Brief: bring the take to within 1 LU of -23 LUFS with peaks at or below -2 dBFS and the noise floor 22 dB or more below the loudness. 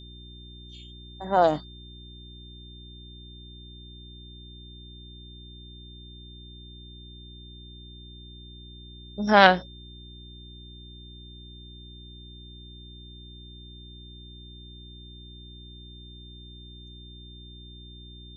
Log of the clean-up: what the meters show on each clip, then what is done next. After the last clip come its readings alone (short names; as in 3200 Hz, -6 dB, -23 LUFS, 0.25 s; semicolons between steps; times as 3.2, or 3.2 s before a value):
hum 60 Hz; harmonics up to 360 Hz; hum level -44 dBFS; steady tone 3600 Hz; tone level -48 dBFS; loudness -21.5 LUFS; peak -1.0 dBFS; loudness target -23.0 LUFS
-> de-hum 60 Hz, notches 6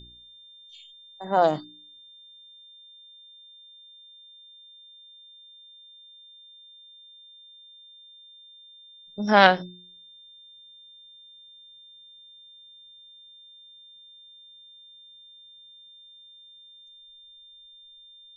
hum none; steady tone 3600 Hz; tone level -48 dBFS
-> notch 3600 Hz, Q 30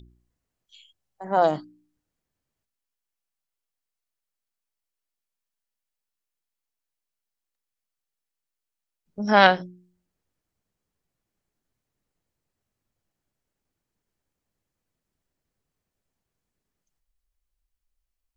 steady tone none; loudness -21.0 LUFS; peak -1.5 dBFS; loudness target -23.0 LUFS
-> gain -2 dB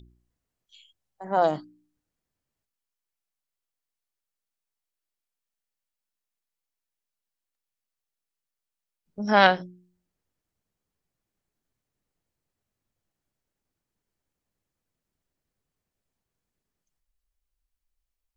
loudness -23.0 LUFS; peak -3.5 dBFS; noise floor -87 dBFS